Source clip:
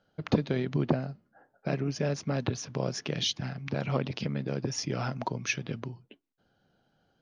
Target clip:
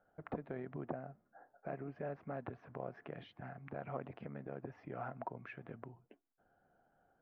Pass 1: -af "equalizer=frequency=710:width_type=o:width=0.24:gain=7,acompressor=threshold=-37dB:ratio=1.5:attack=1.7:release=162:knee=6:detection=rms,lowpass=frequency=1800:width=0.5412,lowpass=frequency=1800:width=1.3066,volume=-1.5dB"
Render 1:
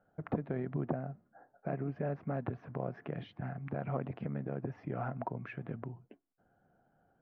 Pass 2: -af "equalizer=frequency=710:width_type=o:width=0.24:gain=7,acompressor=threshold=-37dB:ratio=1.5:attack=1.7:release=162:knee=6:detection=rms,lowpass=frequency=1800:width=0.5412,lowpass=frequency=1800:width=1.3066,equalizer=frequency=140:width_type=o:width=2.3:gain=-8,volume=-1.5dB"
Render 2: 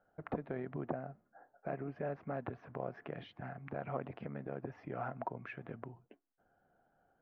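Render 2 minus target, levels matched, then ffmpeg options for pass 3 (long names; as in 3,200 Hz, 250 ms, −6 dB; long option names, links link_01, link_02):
downward compressor: peak gain reduction −3.5 dB
-af "equalizer=frequency=710:width_type=o:width=0.24:gain=7,acompressor=threshold=-47dB:ratio=1.5:attack=1.7:release=162:knee=6:detection=rms,lowpass=frequency=1800:width=0.5412,lowpass=frequency=1800:width=1.3066,equalizer=frequency=140:width_type=o:width=2.3:gain=-8,volume=-1.5dB"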